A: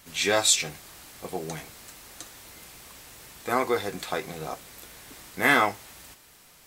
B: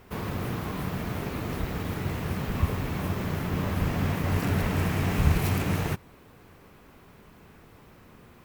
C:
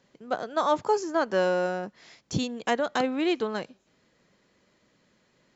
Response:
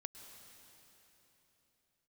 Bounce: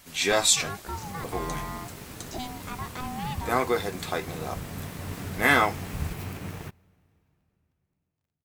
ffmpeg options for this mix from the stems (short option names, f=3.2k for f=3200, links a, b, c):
-filter_complex "[0:a]volume=0dB[a];[1:a]aeval=exprs='sgn(val(0))*max(abs(val(0))-0.00668,0)':c=same,adelay=750,volume=-10dB,asplit=2[b][c];[c]volume=-15.5dB[d];[2:a]alimiter=limit=-21dB:level=0:latency=1,aeval=exprs='val(0)*sin(2*PI*500*n/s)':c=same,volume=-3dB[e];[3:a]atrim=start_sample=2205[f];[d][f]afir=irnorm=-1:irlink=0[g];[a][b][e][g]amix=inputs=4:normalize=0"